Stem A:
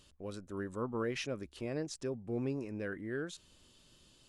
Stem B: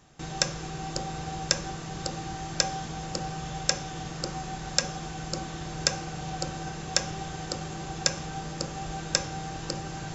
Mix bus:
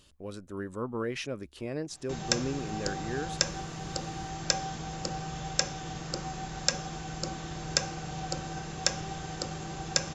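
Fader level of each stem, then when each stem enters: +2.5, −2.0 decibels; 0.00, 1.90 seconds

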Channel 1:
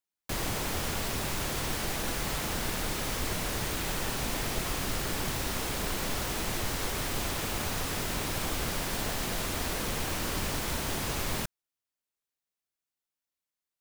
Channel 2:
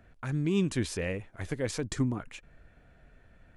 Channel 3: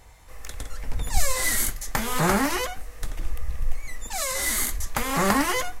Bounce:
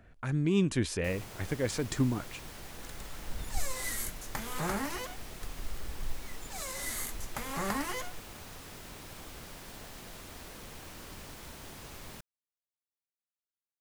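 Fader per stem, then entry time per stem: −14.5, +0.5, −12.0 decibels; 0.75, 0.00, 2.40 seconds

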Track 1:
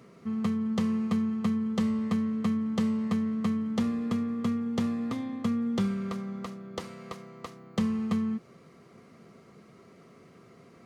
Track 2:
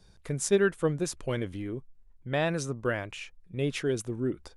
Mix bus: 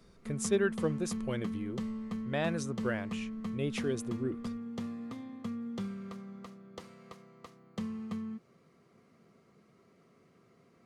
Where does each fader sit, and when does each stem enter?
−10.0, −5.0 decibels; 0.00, 0.00 seconds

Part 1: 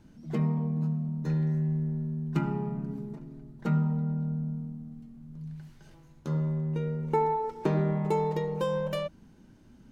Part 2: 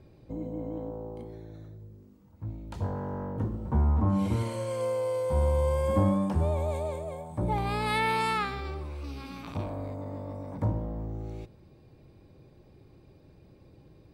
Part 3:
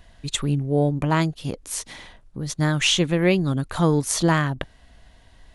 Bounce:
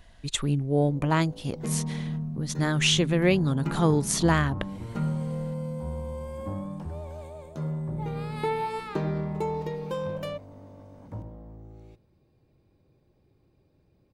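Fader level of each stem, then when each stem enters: −2.5, −10.0, −3.0 decibels; 1.30, 0.50, 0.00 seconds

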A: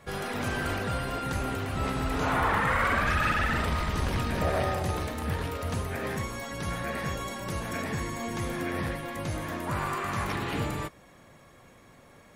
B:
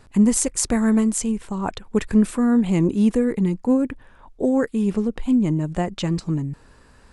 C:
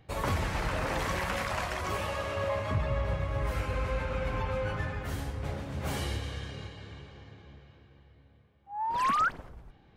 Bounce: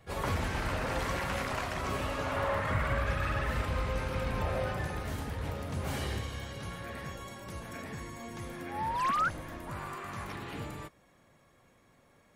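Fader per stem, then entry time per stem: −9.5 dB, muted, −2.5 dB; 0.00 s, muted, 0.00 s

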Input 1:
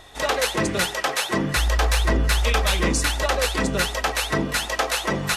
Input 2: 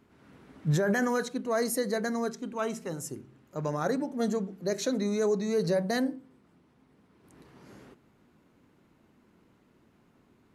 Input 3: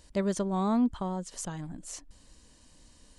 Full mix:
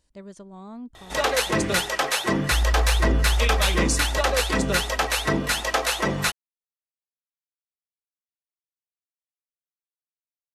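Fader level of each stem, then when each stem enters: 0.0 dB, muted, −13.0 dB; 0.95 s, muted, 0.00 s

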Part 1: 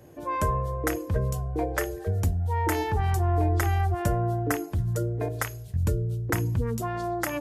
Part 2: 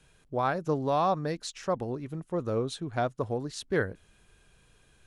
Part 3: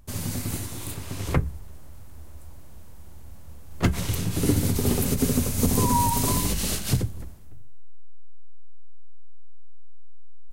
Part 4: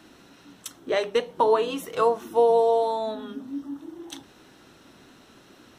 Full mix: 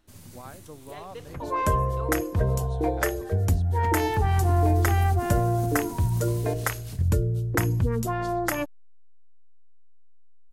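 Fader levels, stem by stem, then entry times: +2.5, −16.5, −16.5, −18.5 decibels; 1.25, 0.00, 0.00, 0.00 seconds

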